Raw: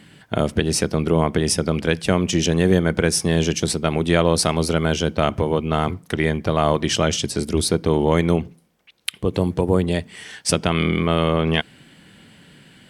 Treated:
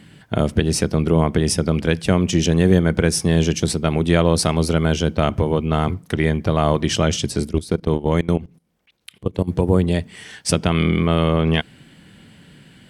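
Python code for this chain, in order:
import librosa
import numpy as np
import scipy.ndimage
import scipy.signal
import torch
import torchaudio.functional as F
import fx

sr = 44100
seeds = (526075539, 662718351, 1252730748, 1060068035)

y = fx.level_steps(x, sr, step_db=18, at=(7.46, 9.47), fade=0.02)
y = fx.low_shelf(y, sr, hz=220.0, db=6.5)
y = y * librosa.db_to_amplitude(-1.0)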